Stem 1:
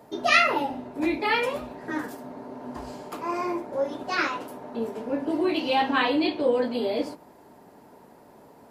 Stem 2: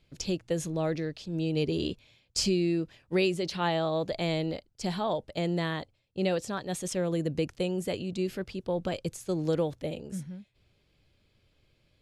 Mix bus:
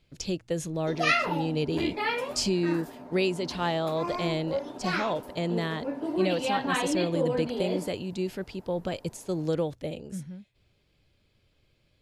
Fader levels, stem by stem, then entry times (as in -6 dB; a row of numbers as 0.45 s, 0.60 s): -5.0 dB, 0.0 dB; 0.75 s, 0.00 s